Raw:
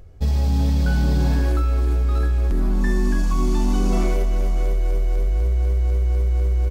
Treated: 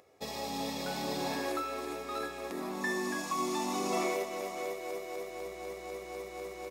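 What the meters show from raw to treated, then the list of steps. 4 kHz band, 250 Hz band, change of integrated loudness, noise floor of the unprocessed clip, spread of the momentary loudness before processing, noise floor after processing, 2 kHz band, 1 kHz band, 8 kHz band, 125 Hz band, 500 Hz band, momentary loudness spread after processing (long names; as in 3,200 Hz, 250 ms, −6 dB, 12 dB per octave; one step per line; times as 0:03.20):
−1.5 dB, −12.0 dB, −14.5 dB, −19 dBFS, 4 LU, −45 dBFS, −3.5 dB, −1.5 dB, can't be measured, −31.0 dB, −5.0 dB, 9 LU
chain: Bessel high-pass filter 550 Hz, order 2
notch comb filter 1,500 Hz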